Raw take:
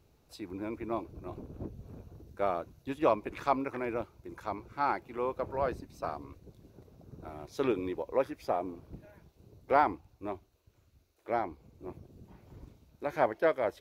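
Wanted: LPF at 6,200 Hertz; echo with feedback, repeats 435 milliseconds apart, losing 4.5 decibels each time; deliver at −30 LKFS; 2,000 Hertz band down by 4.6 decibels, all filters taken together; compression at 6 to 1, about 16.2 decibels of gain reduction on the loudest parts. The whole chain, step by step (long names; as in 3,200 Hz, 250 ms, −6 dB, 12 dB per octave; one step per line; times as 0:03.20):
low-pass filter 6,200 Hz
parametric band 2,000 Hz −6.5 dB
downward compressor 6 to 1, threshold −40 dBFS
repeating echo 435 ms, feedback 60%, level −4.5 dB
level +15 dB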